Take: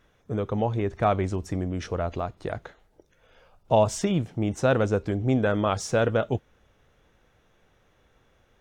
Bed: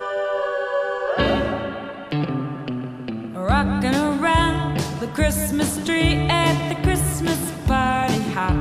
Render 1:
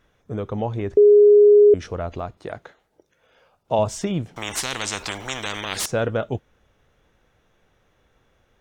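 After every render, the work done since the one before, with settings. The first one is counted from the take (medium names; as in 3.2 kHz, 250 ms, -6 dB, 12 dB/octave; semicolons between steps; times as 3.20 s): 0.97–1.74 s: bleep 414 Hz -8 dBFS; 2.37–3.79 s: high-pass 190 Hz 6 dB/octave; 4.36–5.86 s: spectrum-flattening compressor 10:1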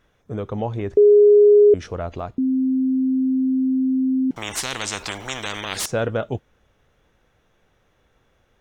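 2.38–4.31 s: bleep 261 Hz -16.5 dBFS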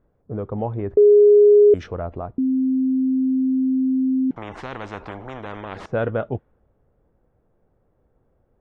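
level-controlled noise filter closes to 670 Hz, open at -9 dBFS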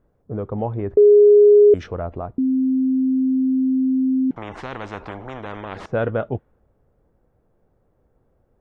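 trim +1 dB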